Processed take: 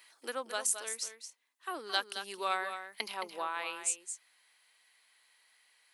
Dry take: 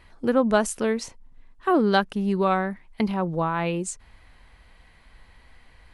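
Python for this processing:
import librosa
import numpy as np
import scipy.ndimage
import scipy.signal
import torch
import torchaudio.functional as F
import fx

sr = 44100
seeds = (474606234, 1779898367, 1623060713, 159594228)

y = scipy.signal.sosfilt(scipy.signal.butter(4, 280.0, 'highpass', fs=sr, output='sos'), x)
y = np.diff(y, prepend=0.0)
y = fx.rider(y, sr, range_db=4, speed_s=0.5)
y = y + 10.0 ** (-9.0 / 20.0) * np.pad(y, (int(219 * sr / 1000.0), 0))[:len(y)]
y = y * 10.0 ** (4.0 / 20.0)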